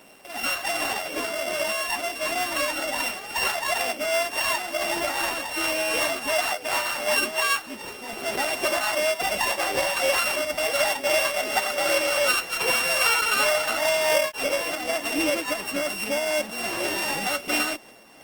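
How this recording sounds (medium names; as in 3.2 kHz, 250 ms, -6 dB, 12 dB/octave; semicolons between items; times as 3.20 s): a buzz of ramps at a fixed pitch in blocks of 16 samples; tremolo triangle 2.7 Hz, depth 35%; Opus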